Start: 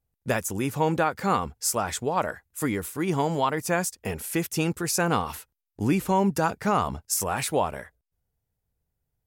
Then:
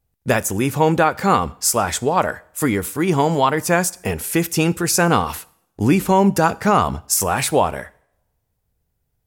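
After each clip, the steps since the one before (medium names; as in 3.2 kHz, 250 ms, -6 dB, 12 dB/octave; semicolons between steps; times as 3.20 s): two-slope reverb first 0.6 s, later 1.6 s, from -27 dB, DRR 18 dB; trim +8 dB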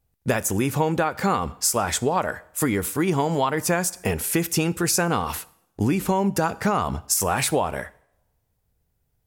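compression, threshold -18 dBFS, peak gain reduction 8.5 dB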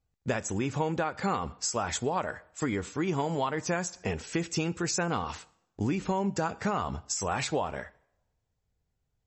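trim -7 dB; MP3 32 kbps 32 kHz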